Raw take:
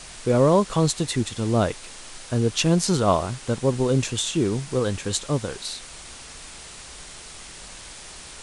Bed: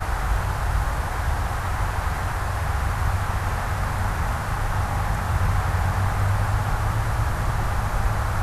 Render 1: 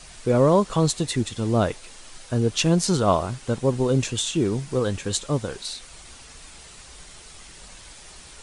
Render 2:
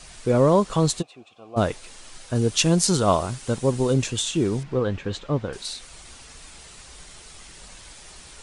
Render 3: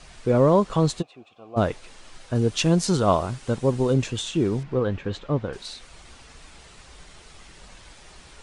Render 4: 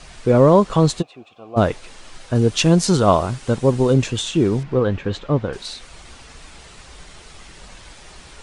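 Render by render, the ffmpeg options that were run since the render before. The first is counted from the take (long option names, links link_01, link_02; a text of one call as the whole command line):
ffmpeg -i in.wav -af "afftdn=noise_reduction=6:noise_floor=-42" out.wav
ffmpeg -i in.wav -filter_complex "[0:a]asplit=3[link_01][link_02][link_03];[link_01]afade=type=out:start_time=1.01:duration=0.02[link_04];[link_02]asplit=3[link_05][link_06][link_07];[link_05]bandpass=frequency=730:width_type=q:width=8,volume=0dB[link_08];[link_06]bandpass=frequency=1090:width_type=q:width=8,volume=-6dB[link_09];[link_07]bandpass=frequency=2440:width_type=q:width=8,volume=-9dB[link_10];[link_08][link_09][link_10]amix=inputs=3:normalize=0,afade=type=in:start_time=1.01:duration=0.02,afade=type=out:start_time=1.56:duration=0.02[link_11];[link_03]afade=type=in:start_time=1.56:duration=0.02[link_12];[link_04][link_11][link_12]amix=inputs=3:normalize=0,asettb=1/sr,asplit=3[link_13][link_14][link_15];[link_13]atrim=end=2.354[link_16];[link_14]atrim=start=2.35:end=3.94,asetpts=PTS-STARTPTS,afade=type=in:duration=0.004:curve=qsin,afade=type=out:start_time=1.586:duration=0.004:curve=qsin,highshelf=frequency=5600:gain=7.5[link_17];[link_15]atrim=start=3.936[link_18];[link_16][link_17]acrossfade=duration=0.004:curve1=hsin:curve2=qsin[link_19];[link_19][link_18]acrossfade=duration=0.004:curve1=qsin:curve2=hsin,asettb=1/sr,asplit=3[link_20][link_21][link_22];[link_20]atrim=end=4.634[link_23];[link_21]atrim=start=4.63:end=5.53,asetpts=PTS-STARTPTS,afade=type=in:duration=0.004:curve=qsin,afade=type=out:start_time=0.896:duration=0.004:curve=qsin,lowpass=2800[link_24];[link_22]atrim=start=5.526[link_25];[link_23][link_24]acrossfade=duration=0.004:curve1=hsin:curve2=qsin[link_26];[link_26][link_25]acrossfade=duration=0.004:curve1=qsin:curve2=hsin" out.wav
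ffmpeg -i in.wav -af "aemphasis=mode=reproduction:type=50kf" out.wav
ffmpeg -i in.wav -af "volume=5.5dB,alimiter=limit=-2dB:level=0:latency=1" out.wav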